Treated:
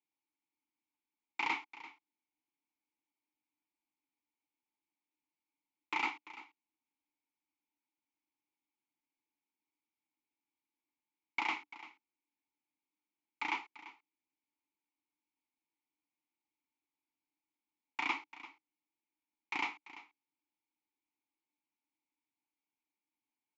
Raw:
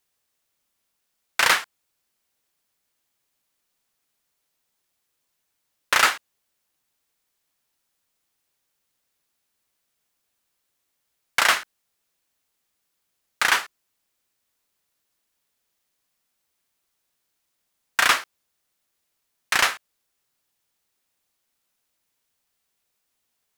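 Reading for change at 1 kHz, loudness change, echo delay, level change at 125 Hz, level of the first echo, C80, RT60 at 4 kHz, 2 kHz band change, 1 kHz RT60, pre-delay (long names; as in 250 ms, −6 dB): −14.5 dB, −17.0 dB, 341 ms, can't be measured, −16.5 dB, no reverb audible, no reverb audible, −17.0 dB, no reverb audible, no reverb audible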